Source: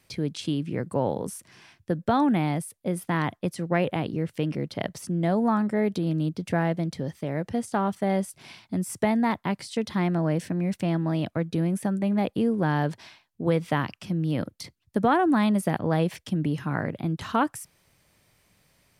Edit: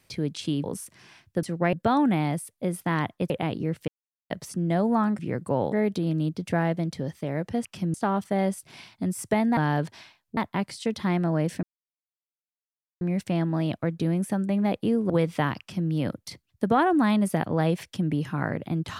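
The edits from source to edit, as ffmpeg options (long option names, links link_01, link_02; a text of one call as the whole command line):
ffmpeg -i in.wav -filter_complex "[0:a]asplit=15[link_01][link_02][link_03][link_04][link_05][link_06][link_07][link_08][link_09][link_10][link_11][link_12][link_13][link_14][link_15];[link_01]atrim=end=0.642[link_16];[link_02]atrim=start=1.168:end=1.962[link_17];[link_03]atrim=start=3.528:end=3.832[link_18];[link_04]atrim=start=1.958:end=3.532[link_19];[link_05]atrim=start=3.828:end=4.41,asetpts=PTS-STARTPTS,afade=type=out:start_time=0.578:duration=0.004:curve=hsin[link_20];[link_06]atrim=start=4.41:end=4.83,asetpts=PTS-STARTPTS,volume=0[link_21];[link_07]atrim=start=4.83:end=5.722,asetpts=PTS-STARTPTS,afade=type=in:duration=0.004:curve=hsin[link_22];[link_08]atrim=start=0.638:end=1.172[link_23];[link_09]atrim=start=5.718:end=7.652[link_24];[link_10]atrim=start=13.928:end=14.222[link_25];[link_11]atrim=start=7.648:end=9.282[link_26];[link_12]atrim=start=12.628:end=13.432[link_27];[link_13]atrim=start=9.278:end=10.54,asetpts=PTS-STARTPTS,afade=type=out:start_time=1.258:duration=0.004:curve=hsin,apad=pad_dur=1.38[link_28];[link_14]atrim=start=10.54:end=12.632,asetpts=PTS-STARTPTS,afade=type=in:duration=0.004:curve=hsin[link_29];[link_15]atrim=start=13.428[link_30];[link_16][link_17]acrossfade=duration=0.004:curve1=hsin:curve2=hsin[link_31];[link_31][link_18]acrossfade=duration=0.004:curve1=hsin:curve2=hsin[link_32];[link_32][link_19]acrossfade=duration=0.004:curve1=hsin:curve2=hsin[link_33];[link_20][link_21][link_22]concat=n=3:v=0:a=1[link_34];[link_33][link_34]acrossfade=duration=0.004:curve1=hsin:curve2=hsin[link_35];[link_35][link_23]acrossfade=duration=0.004:curve1=hsin:curve2=hsin[link_36];[link_36][link_24]acrossfade=duration=0.004:curve1=hsin:curve2=hsin[link_37];[link_37][link_25]acrossfade=duration=0.004:curve1=hsin:curve2=hsin[link_38];[link_38][link_26]acrossfade=duration=0.004:curve1=hsin:curve2=hsin[link_39];[link_39][link_27]acrossfade=duration=0.004:curve1=hsin:curve2=hsin[link_40];[link_28][link_29]concat=n=2:v=0:a=1[link_41];[link_40][link_41]acrossfade=duration=0.004:curve1=hsin:curve2=hsin[link_42];[link_42][link_30]acrossfade=duration=0.004:curve1=hsin:curve2=hsin" out.wav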